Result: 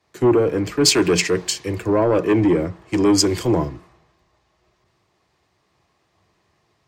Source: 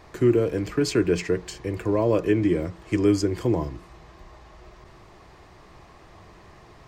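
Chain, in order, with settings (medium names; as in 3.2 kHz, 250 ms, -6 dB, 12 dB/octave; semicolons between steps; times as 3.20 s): high-pass 110 Hz 12 dB/octave; in parallel at +2 dB: peak limiter -17.5 dBFS, peak gain reduction 8 dB; on the sum: sine folder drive 4 dB, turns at -5.5 dBFS; three bands expanded up and down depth 100%; trim -6.5 dB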